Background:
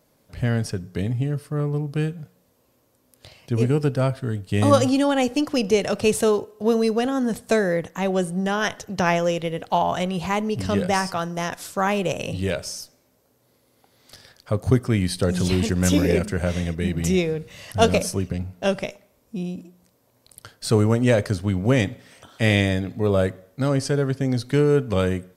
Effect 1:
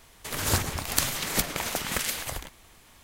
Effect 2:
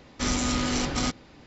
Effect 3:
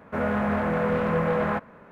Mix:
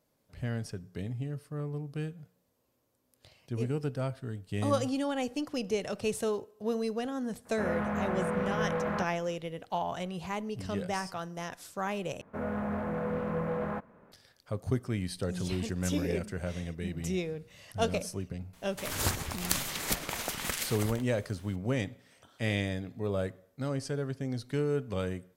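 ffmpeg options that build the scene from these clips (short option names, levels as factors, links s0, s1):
-filter_complex "[3:a]asplit=2[s0][s1];[0:a]volume=0.251[s2];[s1]equalizer=f=2800:w=0.44:g=-6.5[s3];[s2]asplit=2[s4][s5];[s4]atrim=end=12.214[s6];[s3]atrim=end=1.91,asetpts=PTS-STARTPTS,volume=0.422[s7];[s5]atrim=start=14.116[s8];[s0]atrim=end=1.91,asetpts=PTS-STARTPTS,volume=0.422,afade=t=in:d=0.004:c=hsin,afade=t=out:st=1.906:d=0.004:c=hsin,adelay=7450[s9];[1:a]atrim=end=3.03,asetpts=PTS-STARTPTS,volume=0.562,afade=t=in:d=0.004:c=hsin,afade=t=out:st=3.026:d=0.004:c=hsin,adelay=18530[s10];[s6][s7]acrossfade=d=0.004:c1=hsin:c2=hsin[s11];[s11][s8]acrossfade=d=0.004:c1=hsin:c2=hsin[s12];[s12][s9][s10]amix=inputs=3:normalize=0"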